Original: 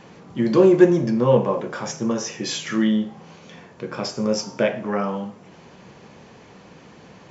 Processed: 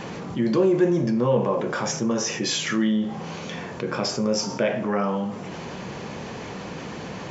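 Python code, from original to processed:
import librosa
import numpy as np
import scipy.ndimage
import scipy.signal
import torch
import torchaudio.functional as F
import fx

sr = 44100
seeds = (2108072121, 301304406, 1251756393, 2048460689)

y = fx.env_flatten(x, sr, amount_pct=50)
y = y * librosa.db_to_amplitude(-8.0)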